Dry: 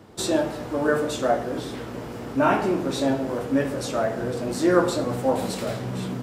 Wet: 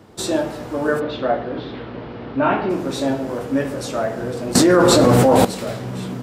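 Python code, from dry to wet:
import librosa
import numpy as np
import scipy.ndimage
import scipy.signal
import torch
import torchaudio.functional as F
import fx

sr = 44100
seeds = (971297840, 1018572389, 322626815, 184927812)

y = fx.steep_lowpass(x, sr, hz=4200.0, slope=36, at=(0.99, 2.69), fade=0.02)
y = fx.env_flatten(y, sr, amount_pct=100, at=(4.55, 5.45))
y = F.gain(torch.from_numpy(y), 2.0).numpy()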